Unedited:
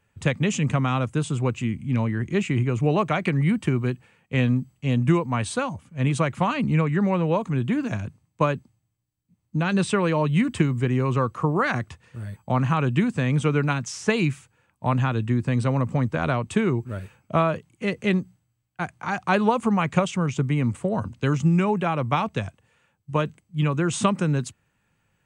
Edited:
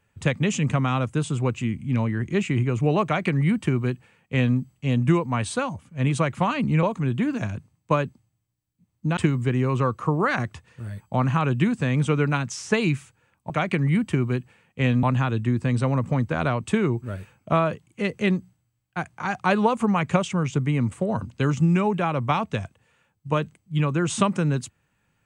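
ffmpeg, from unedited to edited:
-filter_complex "[0:a]asplit=5[s0][s1][s2][s3][s4];[s0]atrim=end=6.832[s5];[s1]atrim=start=7.328:end=9.672[s6];[s2]atrim=start=10.528:end=14.862[s7];[s3]atrim=start=3.038:end=4.572[s8];[s4]atrim=start=14.858[s9];[s5][s6]acrossfade=d=0.004:c1=hsin:c2=hsin[s10];[s10][s7]acrossfade=d=0.004:c1=hsin:c2=hsin[s11];[s11][s8]acrossfade=d=0.004:c1=hsin:c2=hsin[s12];[s12][s9]acrossfade=d=0.004:c1=hsin:c2=hsin"

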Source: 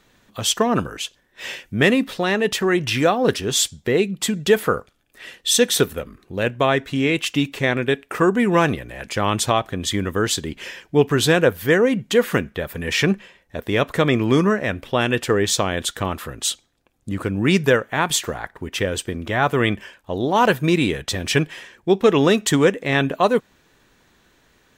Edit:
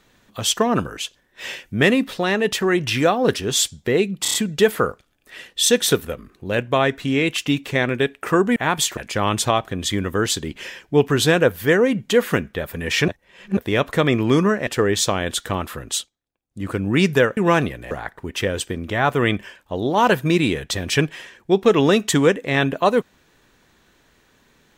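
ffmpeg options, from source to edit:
-filter_complex "[0:a]asplit=14[s0][s1][s2][s3][s4][s5][s6][s7][s8][s9][s10][s11][s12][s13];[s0]atrim=end=4.252[s14];[s1]atrim=start=4.218:end=4.252[s15];[s2]atrim=start=4.218:end=4.252[s16];[s3]atrim=start=4.218:end=4.252[s17];[s4]atrim=start=4.218:end=8.442[s18];[s5]atrim=start=17.878:end=18.292[s19];[s6]atrim=start=8.978:end=13.092[s20];[s7]atrim=start=13.088:end=13.582,asetpts=PTS-STARTPTS,areverse[s21];[s8]atrim=start=13.578:end=14.682[s22];[s9]atrim=start=15.178:end=16.61,asetpts=PTS-STARTPTS,afade=t=out:st=1.262:d=0.17:silence=0.11885[s23];[s10]atrim=start=16.61:end=17.01,asetpts=PTS-STARTPTS,volume=0.119[s24];[s11]atrim=start=17.01:end=17.882,asetpts=PTS-STARTPTS,afade=t=in:d=0.17:silence=0.11885[s25];[s12]atrim=start=8.438:end=8.982[s26];[s13]atrim=start=18.288[s27];[s14][s15]acrossfade=d=0.004:c1=hsin:c2=hsin[s28];[s28][s16]acrossfade=d=0.004:c1=hsin:c2=hsin[s29];[s29][s17]acrossfade=d=0.004:c1=hsin:c2=hsin[s30];[s30][s18]acrossfade=d=0.004:c1=hsin:c2=hsin[s31];[s31][s19]acrossfade=d=0.004:c1=hsin:c2=hsin[s32];[s32][s20]acrossfade=d=0.004:c1=hsin:c2=hsin[s33];[s33][s21]acrossfade=d=0.004:c1=hsin:c2=hsin[s34];[s34][s22]acrossfade=d=0.004:c1=hsin:c2=hsin[s35];[s23][s24][s25]concat=n=3:v=0:a=1[s36];[s35][s36]acrossfade=d=0.004:c1=hsin:c2=hsin[s37];[s37][s26]acrossfade=d=0.004:c1=hsin:c2=hsin[s38];[s38][s27]acrossfade=d=0.004:c1=hsin:c2=hsin"

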